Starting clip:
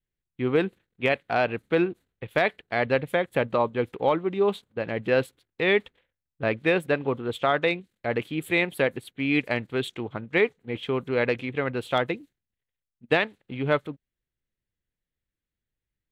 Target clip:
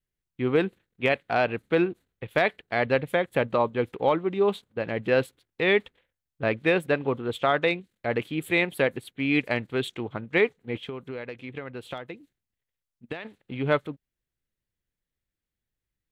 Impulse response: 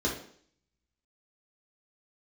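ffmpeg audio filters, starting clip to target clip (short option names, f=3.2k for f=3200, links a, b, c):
-filter_complex "[0:a]asplit=3[a][b][c];[a]afade=t=out:st=10.77:d=0.02[d];[b]acompressor=threshold=-33dB:ratio=10,afade=t=in:st=10.77:d=0.02,afade=t=out:st=13.24:d=0.02[e];[c]afade=t=in:st=13.24:d=0.02[f];[d][e][f]amix=inputs=3:normalize=0"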